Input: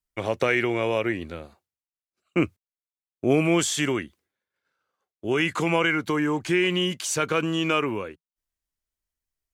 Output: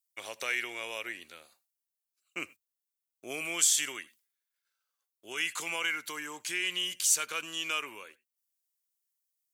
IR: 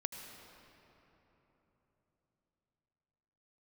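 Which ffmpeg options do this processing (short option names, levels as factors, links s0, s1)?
-filter_complex "[0:a]aderivative,asplit=2[s0][s1];[1:a]atrim=start_sample=2205,atrim=end_sample=4410[s2];[s1][s2]afir=irnorm=-1:irlink=0,volume=0.668[s3];[s0][s3]amix=inputs=2:normalize=0"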